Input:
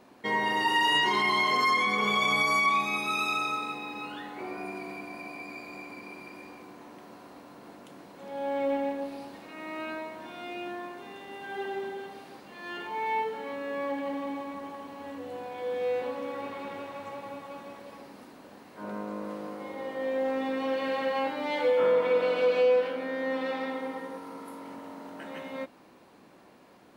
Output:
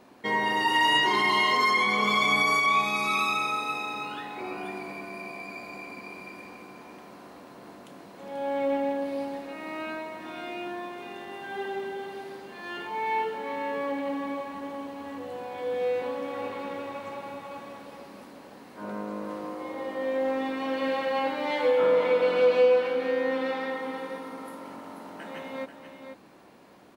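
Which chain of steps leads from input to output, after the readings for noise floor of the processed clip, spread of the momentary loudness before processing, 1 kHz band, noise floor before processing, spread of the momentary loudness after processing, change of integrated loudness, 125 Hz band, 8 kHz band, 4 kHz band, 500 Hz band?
-48 dBFS, 21 LU, +2.0 dB, -55 dBFS, 22 LU, +2.0 dB, +1.5 dB, no reading, +2.0 dB, +2.5 dB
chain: delay 486 ms -8.5 dB; trim +1.5 dB

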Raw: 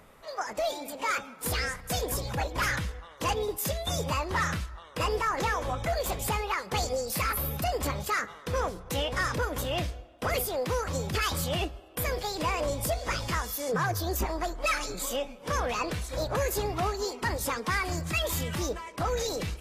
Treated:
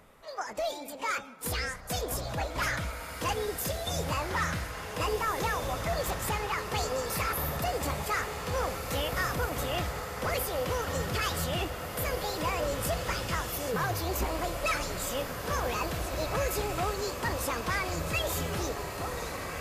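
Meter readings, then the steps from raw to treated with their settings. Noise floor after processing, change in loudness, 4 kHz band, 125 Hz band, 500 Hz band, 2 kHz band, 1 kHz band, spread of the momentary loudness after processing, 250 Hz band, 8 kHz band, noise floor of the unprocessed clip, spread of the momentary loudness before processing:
-41 dBFS, -1.5 dB, -1.5 dB, -1.5 dB, -1.5 dB, -1.0 dB, -1.0 dB, 4 LU, -1.5 dB, -1.5 dB, -50 dBFS, 4 LU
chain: fade out at the end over 1.06 s; echo that smears into a reverb 1841 ms, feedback 67%, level -6.5 dB; trim -2.5 dB

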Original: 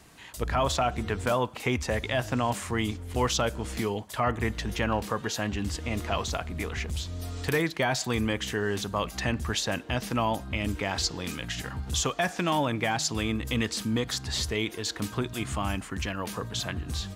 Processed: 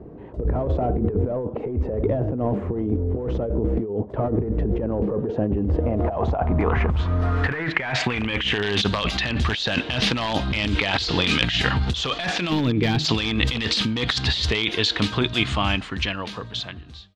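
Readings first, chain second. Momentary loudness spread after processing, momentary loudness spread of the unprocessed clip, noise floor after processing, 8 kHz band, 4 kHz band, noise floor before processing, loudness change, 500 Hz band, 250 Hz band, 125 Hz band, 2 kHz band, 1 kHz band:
5 LU, 6 LU, -38 dBFS, -5.5 dB, +9.0 dB, -43 dBFS, +6.5 dB, +5.0 dB, +6.5 dB, +8.0 dB, +6.5 dB, +1.5 dB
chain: fade out at the end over 3.65 s; dynamic bell 2.7 kHz, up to +4 dB, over -47 dBFS, Q 1.3; in parallel at -3 dB: integer overflow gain 18.5 dB; on the sum: time-frequency box 12.50–13.05 s, 490–12000 Hz -15 dB; low-pass sweep 440 Hz -> 3.8 kHz, 5.42–8.85 s; compressor with a negative ratio -28 dBFS, ratio -1; trim +5.5 dB

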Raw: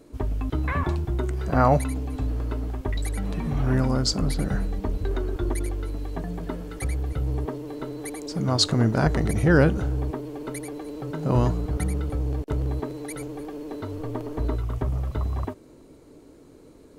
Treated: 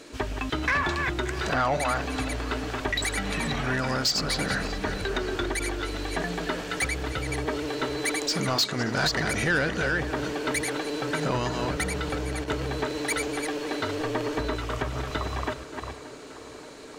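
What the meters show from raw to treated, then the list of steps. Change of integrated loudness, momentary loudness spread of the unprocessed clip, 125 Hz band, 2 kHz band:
-1.5 dB, 14 LU, -8.0 dB, +8.0 dB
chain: chunks repeated in reverse 295 ms, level -9 dB; high-order bell 3.5 kHz +8.5 dB 2.7 oct; band-stop 2.1 kHz, Q 21; compression 6:1, threshold -24 dBFS, peak gain reduction 15 dB; overdrive pedal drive 16 dB, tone 5.9 kHz, clips at -13.5 dBFS; tape echo 578 ms, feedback 82%, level -15.5 dB, low-pass 3.1 kHz; trim -1 dB

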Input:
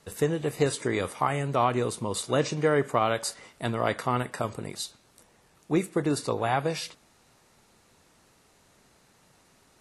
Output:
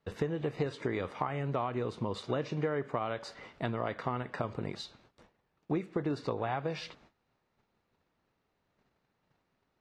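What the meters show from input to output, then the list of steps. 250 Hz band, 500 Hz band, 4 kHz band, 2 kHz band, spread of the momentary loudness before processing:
-6.0 dB, -7.5 dB, -9.5 dB, -8.5 dB, 10 LU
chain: gate -58 dBFS, range -17 dB; compression 6:1, threshold -31 dBFS, peak gain reduction 12.5 dB; distance through air 220 m; trim +2 dB

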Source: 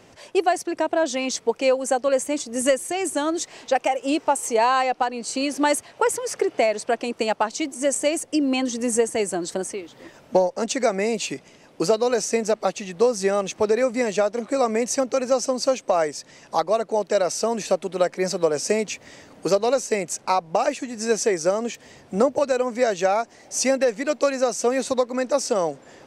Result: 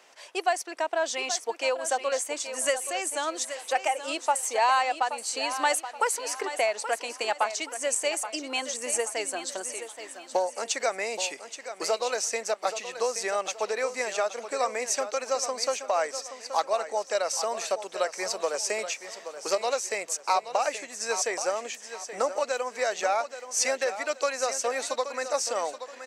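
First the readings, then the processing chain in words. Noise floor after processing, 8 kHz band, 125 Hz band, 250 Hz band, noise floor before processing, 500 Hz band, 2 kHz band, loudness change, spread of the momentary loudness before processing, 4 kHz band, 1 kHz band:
-48 dBFS, -1.0 dB, under -25 dB, -18.0 dB, -52 dBFS, -8.0 dB, -1.5 dB, -5.5 dB, 6 LU, -1.0 dB, -3.5 dB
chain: high-pass 750 Hz 12 dB/octave; feedback delay 826 ms, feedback 35%, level -11 dB; trim -1.5 dB

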